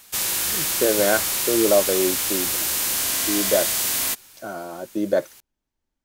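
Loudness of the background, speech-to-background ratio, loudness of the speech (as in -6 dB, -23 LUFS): -21.0 LUFS, -3.0 dB, -24.0 LUFS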